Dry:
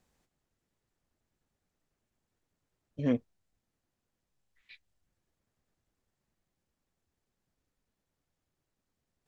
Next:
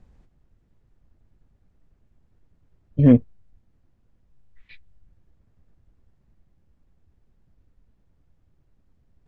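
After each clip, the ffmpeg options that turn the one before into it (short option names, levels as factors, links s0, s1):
-af "aemphasis=mode=reproduction:type=riaa,volume=2.66"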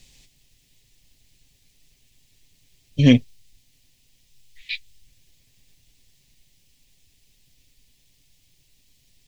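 -af "aecho=1:1:7.4:0.4,aexciter=amount=13.6:drive=8:freq=2200,volume=0.75"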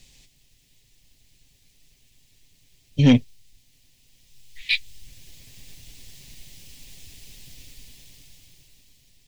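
-af "dynaudnorm=f=280:g=11:m=6.31,asoftclip=type=tanh:threshold=0.473"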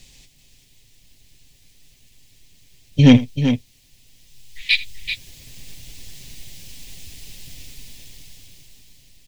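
-af "aecho=1:1:81|385:0.126|0.355,volume=1.78"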